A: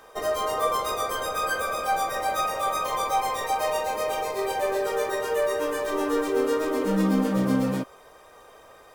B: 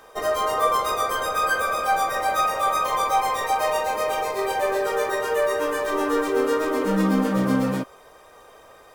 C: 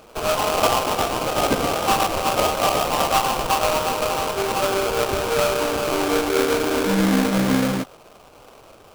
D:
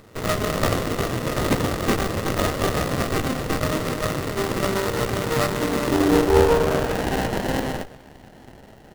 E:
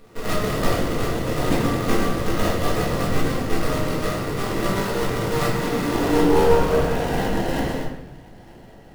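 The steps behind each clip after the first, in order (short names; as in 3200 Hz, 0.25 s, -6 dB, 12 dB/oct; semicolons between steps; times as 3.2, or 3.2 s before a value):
dynamic EQ 1400 Hz, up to +4 dB, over -36 dBFS, Q 0.92; gain +1.5 dB
sample-rate reducer 1900 Hz, jitter 20%; gain +2 dB
feedback echo 0.247 s, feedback 57%, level -22 dB; high-pass sweep 100 Hz -> 910 Hz, 5.07–7.14; running maximum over 33 samples
shoebox room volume 180 m³, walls mixed, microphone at 1.8 m; gain -7 dB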